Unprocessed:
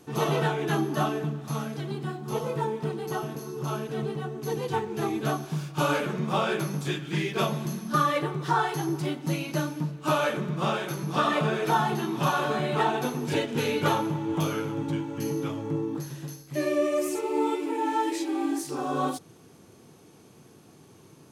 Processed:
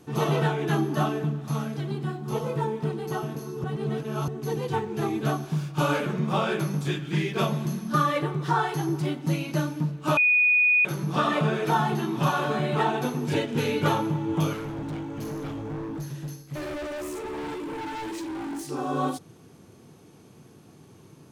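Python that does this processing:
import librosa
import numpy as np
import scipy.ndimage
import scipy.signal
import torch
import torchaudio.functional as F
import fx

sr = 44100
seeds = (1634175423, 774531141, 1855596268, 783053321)

y = fx.overload_stage(x, sr, gain_db=32.5, at=(14.53, 18.68))
y = fx.edit(y, sr, fx.reverse_span(start_s=3.64, length_s=0.64),
    fx.bleep(start_s=10.17, length_s=0.68, hz=2470.0, db=-16.5), tone=tone)
y = fx.bass_treble(y, sr, bass_db=4, treble_db=-2)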